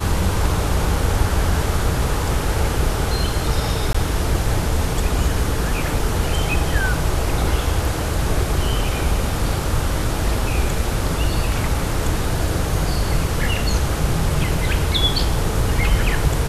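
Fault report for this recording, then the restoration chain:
3.93–3.94 gap 15 ms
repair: interpolate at 3.93, 15 ms

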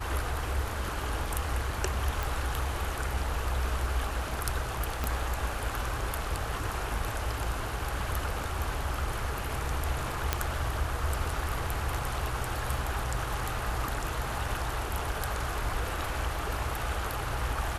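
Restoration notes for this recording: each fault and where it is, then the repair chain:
2.23 pop
5.04 pop -15 dBFS
10.33 pop -9 dBFS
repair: de-click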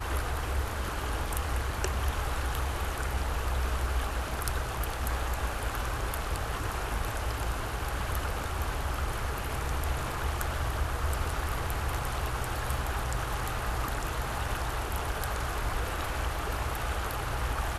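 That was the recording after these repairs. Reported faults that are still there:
5.04 pop

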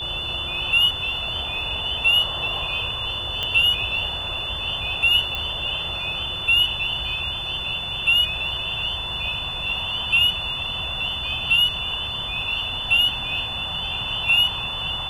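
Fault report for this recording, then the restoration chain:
tone 3500 Hz -28 dBFS
3.43 pop -12 dBFS
5.35 pop -14 dBFS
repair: de-click; notch 3500 Hz, Q 30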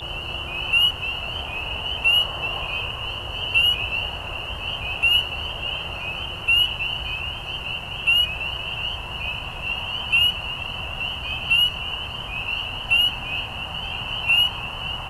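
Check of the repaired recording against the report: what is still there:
none

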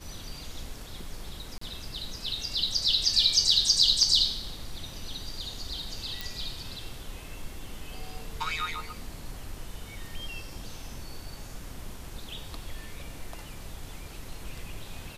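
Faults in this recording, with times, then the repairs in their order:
1.58–1.61 gap 34 ms
6.21 pop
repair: de-click; interpolate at 1.58, 34 ms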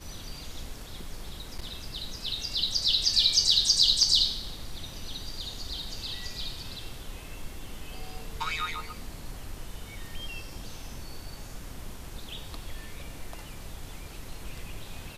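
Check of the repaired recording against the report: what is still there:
none

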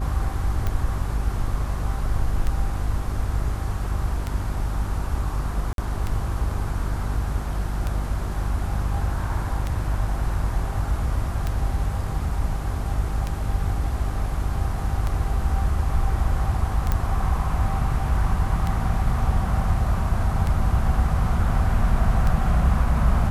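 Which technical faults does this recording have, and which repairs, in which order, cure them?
hum 50 Hz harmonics 8 -27 dBFS
tick 33 1/3 rpm -13 dBFS
5.73–5.78 gap 52 ms
16.92 pop -10 dBFS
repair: de-click; de-hum 50 Hz, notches 8; interpolate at 5.73, 52 ms

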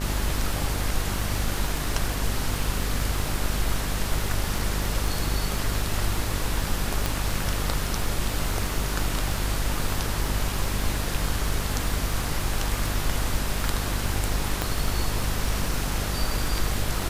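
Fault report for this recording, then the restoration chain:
buzz 50 Hz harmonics 30 -30 dBFS
crackle 27/s -28 dBFS
7.06 pop
14.62 pop -9 dBFS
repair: de-click; de-hum 50 Hz, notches 30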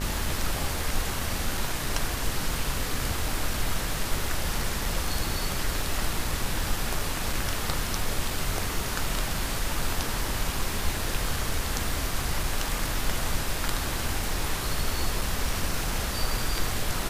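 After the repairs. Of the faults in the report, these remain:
7.06 pop
14.62 pop

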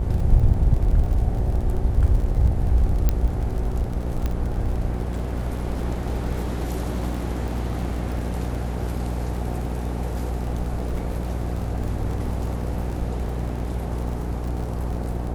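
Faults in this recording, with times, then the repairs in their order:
buzz 60 Hz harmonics 15 -27 dBFS
crackle 43/s -30 dBFS
3.09 pop -8 dBFS
4.26 pop -13 dBFS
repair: de-click; de-hum 60 Hz, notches 15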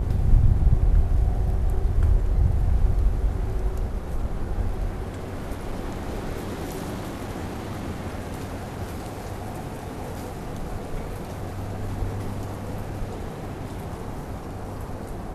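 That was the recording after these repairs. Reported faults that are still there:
none

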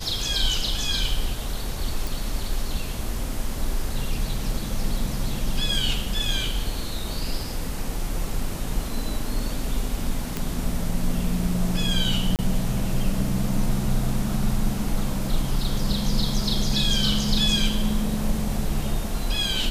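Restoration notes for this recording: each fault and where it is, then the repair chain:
2.07 pop
10.37 pop
12.36–12.39 gap 28 ms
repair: de-click; interpolate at 12.36, 28 ms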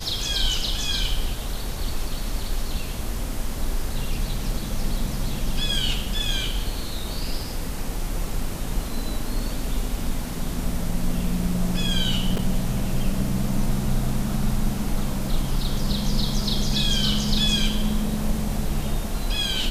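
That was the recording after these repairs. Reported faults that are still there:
none

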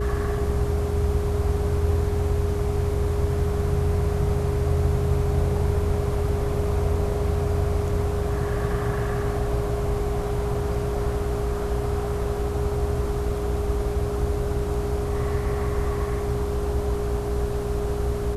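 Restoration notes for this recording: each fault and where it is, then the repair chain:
hum 60 Hz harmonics 6 -29 dBFS
tone 410 Hz -28 dBFS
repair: de-hum 60 Hz, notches 6; notch 410 Hz, Q 30

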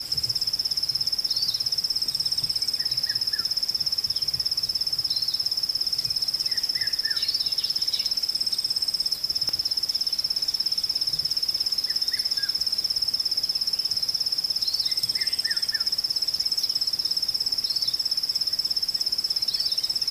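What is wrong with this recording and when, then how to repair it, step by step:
9.49 pop -16 dBFS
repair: de-click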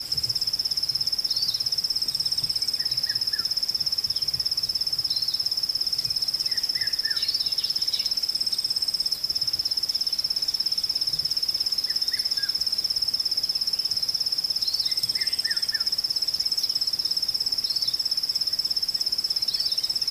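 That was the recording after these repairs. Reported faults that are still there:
none

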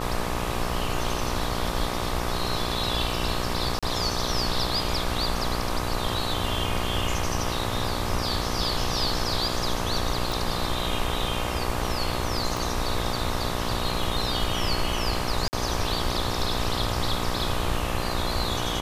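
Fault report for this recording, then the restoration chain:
buzz 60 Hz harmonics 21 -31 dBFS
3.79–3.83 gap 36 ms
10.32 pop
12.57 pop
15.48–15.53 gap 49 ms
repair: de-click; de-hum 60 Hz, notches 21; interpolate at 3.79, 36 ms; interpolate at 15.48, 49 ms

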